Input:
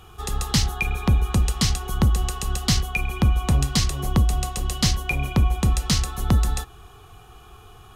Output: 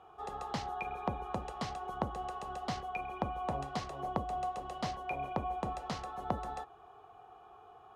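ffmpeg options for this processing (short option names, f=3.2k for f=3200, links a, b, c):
-af "bandpass=f=700:t=q:w=2.2:csg=0"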